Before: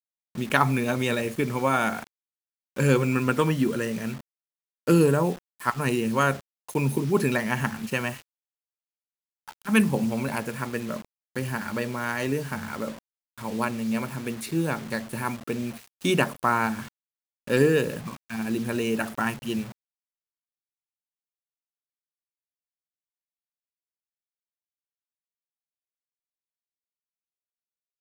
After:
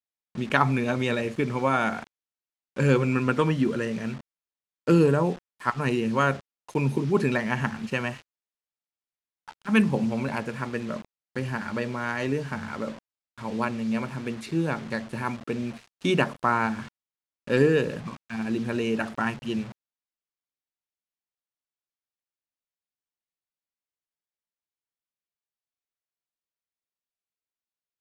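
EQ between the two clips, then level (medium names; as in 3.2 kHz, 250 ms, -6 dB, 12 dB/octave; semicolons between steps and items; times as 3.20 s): distance through air 81 m; 0.0 dB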